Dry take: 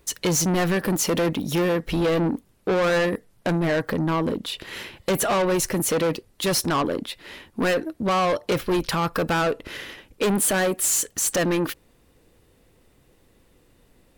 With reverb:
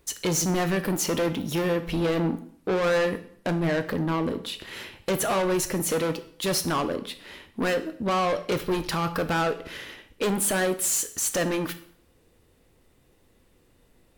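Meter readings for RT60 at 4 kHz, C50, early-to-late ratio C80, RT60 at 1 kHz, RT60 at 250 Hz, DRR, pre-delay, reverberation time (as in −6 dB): 0.55 s, 13.5 dB, 17.0 dB, 0.60 s, 0.55 s, 9.5 dB, 6 ms, 0.60 s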